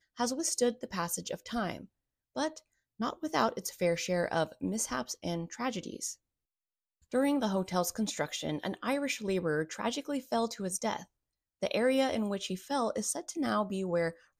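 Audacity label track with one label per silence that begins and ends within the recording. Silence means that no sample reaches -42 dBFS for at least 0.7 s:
6.130000	7.130000	silence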